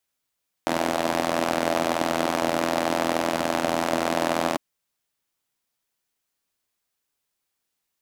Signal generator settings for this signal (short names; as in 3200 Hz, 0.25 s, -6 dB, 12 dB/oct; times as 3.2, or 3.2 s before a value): four-cylinder engine model, steady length 3.90 s, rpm 2500, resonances 300/610 Hz